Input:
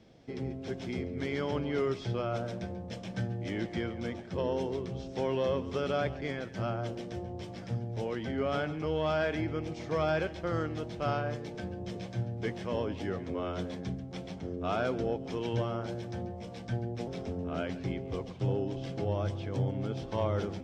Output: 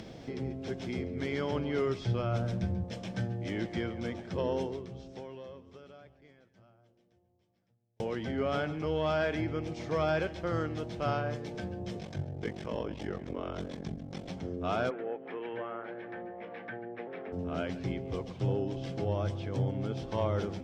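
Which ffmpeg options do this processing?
ffmpeg -i in.wav -filter_complex "[0:a]asettb=1/sr,asplit=3[link_01][link_02][link_03];[link_01]atrim=end=1.824[link_04];[link_02]atrim=start=1.82:end=2.84,asetpts=PTS-STARTPTS,afade=type=in:duration=0.004:curve=qsin,afade=type=out:start_time=1.016:duration=0.004:curve=qsin,asubboost=boost=9.5:cutoff=230[link_05];[link_03]atrim=start=2.836[link_06];[link_04][link_05]acrossfade=duration=0.004:curve1=hsin:curve2=qsin[link_07];[link_07][link_06]acrossfade=duration=0.004:curve1=qsin:curve2=hsin,asettb=1/sr,asplit=3[link_08][link_09][link_10];[link_08]atrim=end=11.994[link_11];[link_09]atrim=start=11.99:end=14.29,asetpts=PTS-STARTPTS,afade=type=in:duration=0.004:curve=qsin,afade=type=out:start_time=2.296:duration=0.004:curve=qsin,aeval=exprs='val(0)*sin(2*PI*23*n/s)':channel_layout=same[link_12];[link_10]atrim=start=14.286[link_13];[link_11][link_12]acrossfade=duration=0.004:curve1=hsin:curve2=qsin[link_14];[link_14][link_13]acrossfade=duration=0.004:curve1=qsin:curve2=hsin,asplit=3[link_15][link_16][link_17];[link_15]afade=type=out:start_time=14.89:duration=0.02[link_18];[link_16]highpass=450,equalizer=frequency=620:width_type=q:width=4:gain=-5,equalizer=frequency=950:width_type=q:width=4:gain=-4,equalizer=frequency=1800:width_type=q:width=4:gain=6,lowpass=frequency=2300:width=0.5412,lowpass=frequency=2300:width=1.3066,afade=type=in:start_time=14.89:duration=0.02,afade=type=out:start_time=17.32:duration=0.02[link_19];[link_17]afade=type=in:start_time=17.32:duration=0.02[link_20];[link_18][link_19][link_20]amix=inputs=3:normalize=0,asplit=2[link_21][link_22];[link_21]atrim=end=8,asetpts=PTS-STARTPTS,afade=type=out:start_time=4.61:duration=3.39:curve=exp[link_23];[link_22]atrim=start=8,asetpts=PTS-STARTPTS,afade=type=in:duration=0.004:curve=hsin[link_24];[link_23][link_24]concat=n=2:v=0:a=1,acompressor=mode=upward:threshold=-35dB:ratio=2.5" out.wav

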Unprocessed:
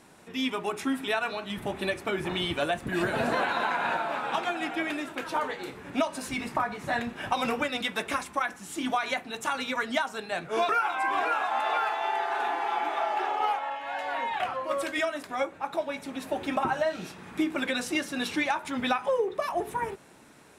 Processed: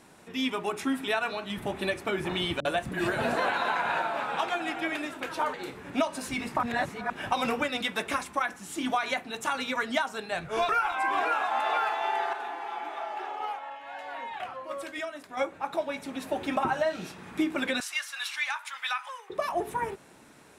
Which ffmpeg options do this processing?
ffmpeg -i in.wav -filter_complex "[0:a]asettb=1/sr,asplit=3[link_01][link_02][link_03];[link_01]atrim=end=2.604[link_04];[link_02]atrim=start=2.6:end=5.54,asetpts=PTS-STARTPTS,afade=type=in:duration=0.004:curve=qsin,afade=type=out:start_time=2.936:duration=0.004:curve=qsin,acrossover=split=250[link_05][link_06];[link_06]adelay=50[link_07];[link_05][link_07]amix=inputs=2:normalize=0,atrim=end_sample=129654[link_08];[link_03]atrim=start=5.536[link_09];[link_04][link_08]acrossfade=duration=0.004:curve1=hsin:curve2=qsin[link_10];[link_10][link_09]acrossfade=duration=0.004:curve1=qsin:curve2=hsin,asplit=3[link_11][link_12][link_13];[link_11]afade=type=out:start_time=10.34:duration=0.02[link_14];[link_12]asubboost=boost=7.5:cutoff=92,afade=type=in:start_time=10.34:duration=0.02,afade=type=out:start_time=10.96:duration=0.02[link_15];[link_13]afade=type=in:start_time=10.96:duration=0.02[link_16];[link_14][link_15][link_16]amix=inputs=3:normalize=0,asettb=1/sr,asplit=3[link_17][link_18][link_19];[link_17]atrim=end=17.804[link_20];[link_18]atrim=start=17.8:end=19.3,asetpts=PTS-STARTPTS,afade=type=in:duration=0.004:curve=qsin,afade=type=out:start_time=1.496:duration=0.004:curve=qsin,highpass=frequency=1100:width=0.5412,highpass=frequency=1100:width=1.3066[link_21];[link_19]atrim=start=19.296[link_22];[link_20][link_21]acrossfade=duration=0.004:curve1=hsin:curve2=qsin[link_23];[link_23][link_22]acrossfade=duration=0.004:curve1=qsin:curve2=hsin,asplit=5[link_24][link_25][link_26][link_27][link_28];[link_24]atrim=end=6.632[link_29];[link_25]atrim=start=6.628:end=7.102,asetpts=PTS-STARTPTS,areverse[link_30];[link_26]atrim=start=7.098:end=12.332[link_31];[link_27]atrim=start=12.328:end=15.372,asetpts=PTS-STARTPTS,volume=-7dB[link_32];[link_28]atrim=start=15.368[link_33];[link_29][link_30]acrossfade=duration=0.004:curve1=hsin:curve2=hsin[link_34];[link_34][link_31]acrossfade=duration=0.004:curve1=hsin:curve2=hsin[link_35];[link_35][link_32]acrossfade=duration=0.004:curve1=hsin:curve2=hsin[link_36];[link_36][link_33]acrossfade=duration=0.004:curve1=hsin:curve2=hsin" out.wav

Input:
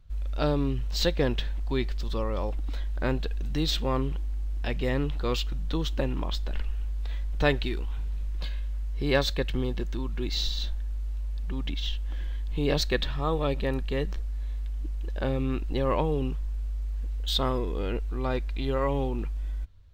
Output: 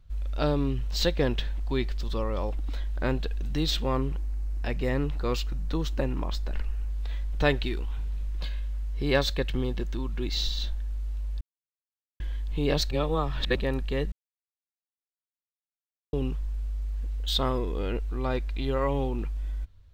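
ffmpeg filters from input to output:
ffmpeg -i in.wav -filter_complex "[0:a]asettb=1/sr,asplit=3[link_01][link_02][link_03];[link_01]atrim=end=3.954[link_04];[link_02]atrim=start=3.95:end=6.9,asetpts=PTS-STARTPTS,afade=type=in:duration=0.004:curve=qsin,afade=type=out:start_time=2.946:duration=0.004:curve=qsin,equalizer=frequency=3300:width=3.1:gain=-7[link_05];[link_03]atrim=start=6.896[link_06];[link_04][link_05]acrossfade=duration=0.004:curve1=hsin:curve2=qsin[link_07];[link_07][link_06]acrossfade=duration=0.004:curve1=qsin:curve2=hsin,asplit=7[link_08][link_09][link_10][link_11][link_12][link_13][link_14];[link_08]atrim=end=11.41,asetpts=PTS-STARTPTS,afade=type=out:start_time=11.406:duration=0.004:curve=hsin[link_15];[link_09]atrim=start=11.41:end=12.2,asetpts=PTS-STARTPTS,volume=0[link_16];[link_10]atrim=start=12.2:end=12.912,asetpts=PTS-STARTPTS,afade=type=in:duration=0.004:curve=hsin[link_17];[link_11]atrim=start=12.908:end=13.562,asetpts=PTS-STARTPTS,areverse[link_18];[link_12]atrim=start=13.558:end=14.12,asetpts=PTS-STARTPTS,afade=type=out:start_time=0.558:duration=0.004:curve=hsin[link_19];[link_13]atrim=start=14.12:end=16.13,asetpts=PTS-STARTPTS,volume=0[link_20];[link_14]atrim=start=16.13,asetpts=PTS-STARTPTS,afade=type=in:duration=0.004:curve=hsin[link_21];[link_15][link_16][link_17]concat=n=3:v=0:a=1[link_22];[link_22][link_18]acrossfade=duration=0.004:curve1=hsin:curve2=hsin[link_23];[link_19][link_20][link_21]concat=n=3:v=0:a=1[link_24];[link_23][link_24]acrossfade=duration=0.004:curve1=hsin:curve2=hsin" out.wav

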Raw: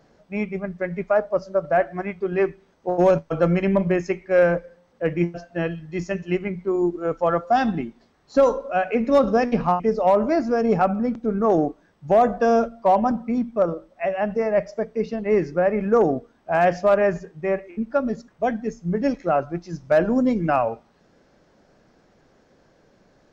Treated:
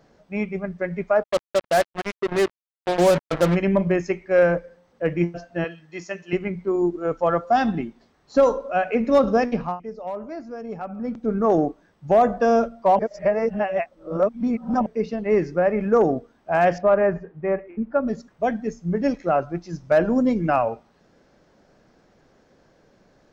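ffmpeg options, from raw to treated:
ffmpeg -i in.wav -filter_complex "[0:a]asplit=3[link_01][link_02][link_03];[link_01]afade=type=out:start_time=1.22:duration=0.02[link_04];[link_02]acrusher=bits=3:mix=0:aa=0.5,afade=type=in:start_time=1.22:duration=0.02,afade=type=out:start_time=3.54:duration=0.02[link_05];[link_03]afade=type=in:start_time=3.54:duration=0.02[link_06];[link_04][link_05][link_06]amix=inputs=3:normalize=0,asettb=1/sr,asplit=3[link_07][link_08][link_09];[link_07]atrim=end=5.644[link_10];[link_08]atrim=start=5.64:end=6.33,asetpts=PTS-STARTPTS,afade=type=in:duration=0.004:curve=qsin,afade=type=out:start_time=0.686:duration=0.004:curve=qsin,highpass=frequency=720:poles=1[link_11];[link_09]atrim=start=6.326[link_12];[link_10][link_11]acrossfade=duration=0.004:curve1=hsin:curve2=qsin[link_13];[link_13][link_12]acrossfade=duration=0.004:curve1=qsin:curve2=hsin,asettb=1/sr,asplit=3[link_14][link_15][link_16];[link_14]atrim=end=16.784[link_17];[link_15]atrim=start=16.78:end=18.08,asetpts=PTS-STARTPTS,afade=type=in:duration=0.004:curve=qsin,afade=type=out:start_time=1.296:duration=0.004:curve=qsin,lowpass=1900[link_18];[link_16]atrim=start=18.076[link_19];[link_17][link_18]acrossfade=duration=0.004:curve1=hsin:curve2=qsin[link_20];[link_20][link_19]acrossfade=duration=0.004:curve1=qsin:curve2=hsin,asplit=5[link_21][link_22][link_23][link_24][link_25];[link_21]atrim=end=9.81,asetpts=PTS-STARTPTS,afade=type=out:start_time=9.4:duration=0.41:silence=0.211349[link_26];[link_22]atrim=start=9.81:end=10.88,asetpts=PTS-STARTPTS,volume=-13.5dB[link_27];[link_23]atrim=start=10.88:end=12.992,asetpts=PTS-STARTPTS,afade=type=in:duration=0.41:silence=0.211349[link_28];[link_24]atrim=start=12.988:end=14.862,asetpts=PTS-STARTPTS,areverse[link_29];[link_25]atrim=start=14.858[link_30];[link_26][link_27][link_28]concat=n=3:v=0:a=1[link_31];[link_31][link_29]acrossfade=duration=0.004:curve1=hsin:curve2=hsin[link_32];[link_32][link_30]acrossfade=duration=0.004:curve1=hsin:curve2=hsin" out.wav

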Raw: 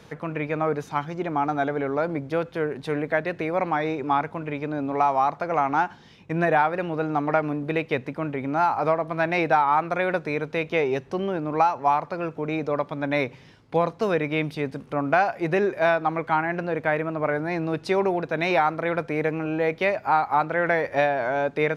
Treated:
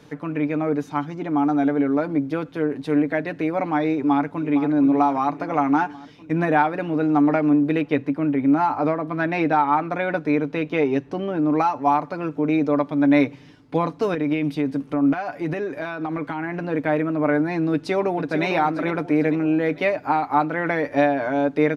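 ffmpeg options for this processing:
ffmpeg -i in.wav -filter_complex "[0:a]asplit=2[link_01][link_02];[link_02]afade=type=in:start_time=3.91:duration=0.01,afade=type=out:start_time=4.52:duration=0.01,aecho=0:1:460|920|1380|1840|2300|2760|3220|3680:0.298538|0.19405|0.126132|0.0819861|0.0532909|0.0346391|0.0225154|0.014635[link_03];[link_01][link_03]amix=inputs=2:normalize=0,asettb=1/sr,asplit=3[link_04][link_05][link_06];[link_04]atrim=end=7.814[link_07];[link_05]atrim=start=7.81:end=11.42,asetpts=PTS-STARTPTS,afade=type=in:duration=0.004:curve=qsin,afade=type=out:start_time=3.606:duration=0.004:curve=qsin,highshelf=frequency=5100:gain=-7[link_08];[link_06]atrim=start=11.416[link_09];[link_07][link_08]acrossfade=duration=0.004:curve1=hsin:curve2=qsin[link_10];[link_10][link_09]acrossfade=duration=0.004:curve1=qsin:curve2=hsin,asettb=1/sr,asplit=3[link_11][link_12][link_13];[link_11]atrim=end=14.144[link_14];[link_12]atrim=start=14.14:end=16.62,asetpts=PTS-STARTPTS,afade=type=in:duration=0.004:curve=qsin,afade=type=out:start_time=2.476:duration=0.004:curve=qsin,acompressor=threshold=-24dB:ratio=6:attack=3.2:release=140:knee=1:detection=peak[link_15];[link_13]atrim=start=16.616[link_16];[link_14][link_15]acrossfade=duration=0.004:curve1=hsin:curve2=qsin[link_17];[link_17][link_16]acrossfade=duration=0.004:curve1=qsin:curve2=hsin,asplit=2[link_18][link_19];[link_19]afade=type=in:start_time=17.72:duration=0.01,afade=type=out:start_time=18.45:duration=0.01,aecho=0:1:450|900|1350|1800|2250|2700:0.334965|0.167483|0.0837414|0.0418707|0.0209353|0.0104677[link_20];[link_18][link_20]amix=inputs=2:normalize=0,equalizer=frequency=280:width_type=o:width=0.43:gain=11.5,aecho=1:1:6.8:0.46,dynaudnorm=framelen=320:gausssize=21:maxgain=3dB,volume=-2.5dB" out.wav

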